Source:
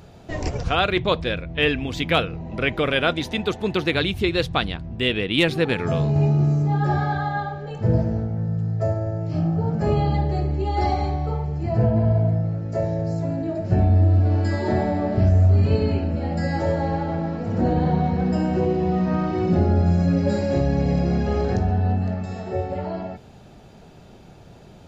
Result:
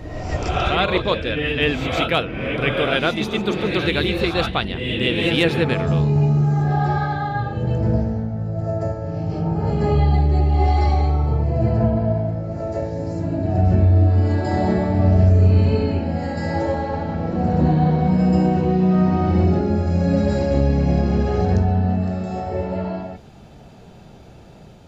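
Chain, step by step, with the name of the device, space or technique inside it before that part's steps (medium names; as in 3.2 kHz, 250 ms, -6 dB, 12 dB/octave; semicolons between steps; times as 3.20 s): reverse reverb (reverse; reverberation RT60 1.1 s, pre-delay 120 ms, DRR 2 dB; reverse)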